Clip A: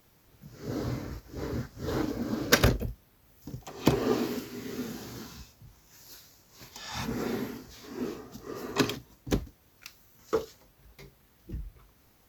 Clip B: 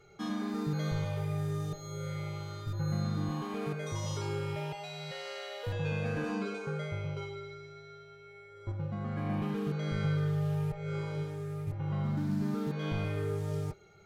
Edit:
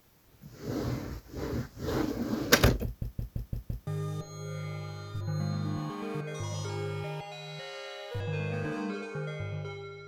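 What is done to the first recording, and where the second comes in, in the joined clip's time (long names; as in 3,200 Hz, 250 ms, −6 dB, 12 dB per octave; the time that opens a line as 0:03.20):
clip A
0:02.85: stutter in place 0.17 s, 6 plays
0:03.87: continue with clip B from 0:01.39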